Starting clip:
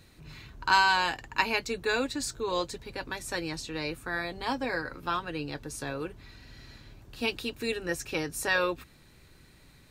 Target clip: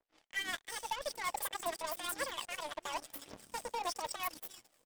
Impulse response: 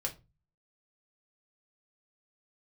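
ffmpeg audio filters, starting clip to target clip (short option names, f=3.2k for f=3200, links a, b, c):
-filter_complex "[0:a]highpass=150,highshelf=f=8.1k:g=-4.5,bandreject=f=2k:w=5.6,areverse,acompressor=threshold=-39dB:ratio=8,areverse,alimiter=level_in=10.5dB:limit=-24dB:level=0:latency=1:release=303,volume=-10.5dB,dynaudnorm=f=190:g=3:m=5dB,asetrate=89964,aresample=44100,acrossover=split=360|4100[a][b][c];[a]adelay=300[d];[c]adelay=340[e];[d][b][e]amix=inputs=3:normalize=0,acrossover=split=910[f][g];[f]aeval=exprs='val(0)*(1-0.5/2+0.5/2*cos(2*PI*6*n/s))':c=same[h];[g]aeval=exprs='val(0)*(1-0.5/2-0.5/2*cos(2*PI*6*n/s))':c=same[i];[h][i]amix=inputs=2:normalize=0,asoftclip=type=tanh:threshold=-39dB,aphaser=in_gain=1:out_gain=1:delay=3:decay=0.48:speed=0.9:type=triangular,aeval=exprs='0.0211*(cos(1*acos(clip(val(0)/0.0211,-1,1)))-cos(1*PI/2))+0.000211*(cos(3*acos(clip(val(0)/0.0211,-1,1)))-cos(3*PI/2))+0.000531*(cos(4*acos(clip(val(0)/0.0211,-1,1)))-cos(4*PI/2))+0.000596*(cos(5*acos(clip(val(0)/0.0211,-1,1)))-cos(5*PI/2))+0.00335*(cos(7*acos(clip(val(0)/0.0211,-1,1)))-cos(7*PI/2))':c=same,volume=6.5dB"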